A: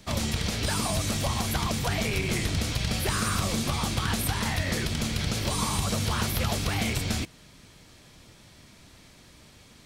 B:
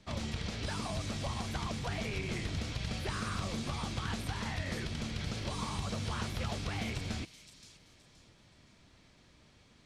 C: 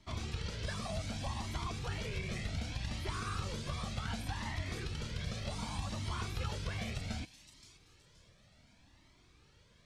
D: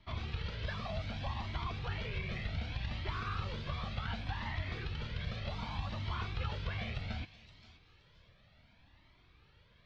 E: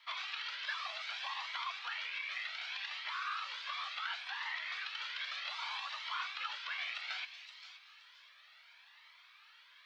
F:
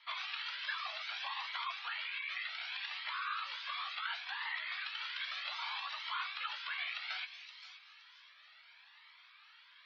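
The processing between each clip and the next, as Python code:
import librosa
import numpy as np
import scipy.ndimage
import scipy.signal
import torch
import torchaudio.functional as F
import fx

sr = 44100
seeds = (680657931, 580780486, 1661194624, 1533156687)

y1 = fx.air_absorb(x, sr, metres=77.0)
y1 = fx.echo_wet_highpass(y1, sr, ms=522, feedback_pct=31, hz=4900.0, wet_db=-6)
y1 = F.gain(torch.from_numpy(y1), -8.5).numpy()
y2 = fx.comb_cascade(y1, sr, direction='rising', hz=0.66)
y2 = F.gain(torch.from_numpy(y2), 1.5).numpy()
y3 = scipy.signal.sosfilt(scipy.signal.butter(4, 3900.0, 'lowpass', fs=sr, output='sos'), y2)
y3 = fx.peak_eq(y3, sr, hz=290.0, db=-5.5, octaves=1.6)
y3 = y3 + 10.0 ** (-22.0 / 20.0) * np.pad(y3, (int(537 * sr / 1000.0), 0))[:len(y3)]
y3 = F.gain(torch.from_numpy(y3), 1.5).numpy()
y4 = scipy.signal.sosfilt(scipy.signal.butter(4, 1100.0, 'highpass', fs=sr, output='sos'), y3)
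y4 = fx.rider(y4, sr, range_db=10, speed_s=0.5)
y4 = F.gain(torch.from_numpy(y4), 5.5).numpy()
y5 = fx.spec_gate(y4, sr, threshold_db=-25, keep='strong')
y5 = fx.doubler(y5, sr, ms=16.0, db=-11.0)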